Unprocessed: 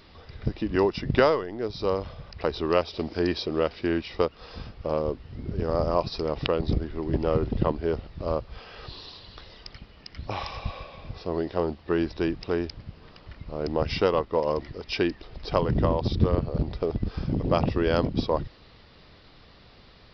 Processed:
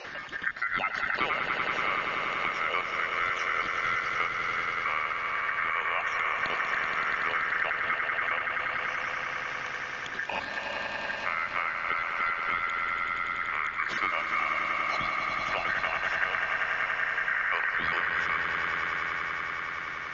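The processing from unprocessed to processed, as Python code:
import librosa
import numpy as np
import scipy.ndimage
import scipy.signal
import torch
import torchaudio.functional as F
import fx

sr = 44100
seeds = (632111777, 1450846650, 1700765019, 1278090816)

p1 = fx.spec_dropout(x, sr, seeds[0], share_pct=28)
p2 = scipy.signal.sosfilt(scipy.signal.butter(2, 65.0, 'highpass', fs=sr, output='sos'), p1)
p3 = fx.over_compress(p2, sr, threshold_db=-29.0, ratio=-1.0)
p4 = p2 + (p3 * 10.0 ** (-2.5 / 20.0))
p5 = p4 * np.sin(2.0 * np.pi * 1700.0 * np.arange(len(p4)) / sr)
p6 = fx.air_absorb(p5, sr, metres=200.0)
p7 = p6 + fx.echo_swell(p6, sr, ms=95, loudest=5, wet_db=-8.0, dry=0)
p8 = fx.band_squash(p7, sr, depth_pct=70)
y = p8 * 10.0 ** (-4.0 / 20.0)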